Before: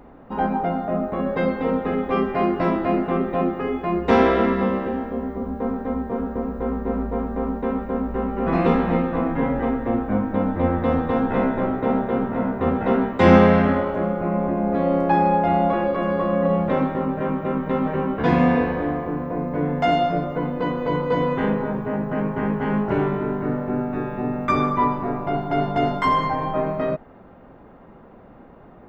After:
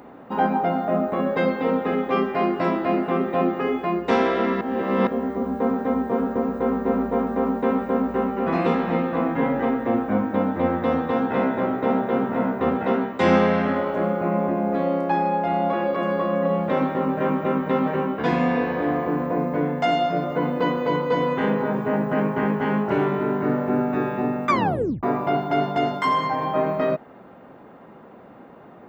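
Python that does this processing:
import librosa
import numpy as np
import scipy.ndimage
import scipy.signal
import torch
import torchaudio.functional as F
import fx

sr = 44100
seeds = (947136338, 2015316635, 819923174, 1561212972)

y = fx.edit(x, sr, fx.reverse_span(start_s=4.61, length_s=0.46),
    fx.tape_stop(start_s=24.5, length_s=0.53), tone=tone)
y = scipy.signal.sosfilt(scipy.signal.bessel(2, 170.0, 'highpass', norm='mag', fs=sr, output='sos'), y)
y = fx.high_shelf(y, sr, hz=3800.0, db=6.0)
y = fx.rider(y, sr, range_db=4, speed_s=0.5)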